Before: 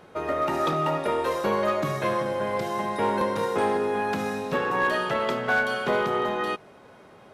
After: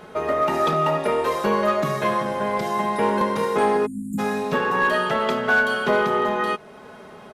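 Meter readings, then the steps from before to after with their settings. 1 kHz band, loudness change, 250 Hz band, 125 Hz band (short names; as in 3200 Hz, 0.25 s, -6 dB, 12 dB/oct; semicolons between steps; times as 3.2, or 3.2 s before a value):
+4.5 dB, +4.0 dB, +4.5 dB, +3.0 dB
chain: spectral delete 3.86–4.18, 330–6700 Hz; comb 4.7 ms, depth 47%; in parallel at -1.5 dB: compressor, threshold -38 dBFS, peak gain reduction 18.5 dB; on the sum: gain +1.5 dB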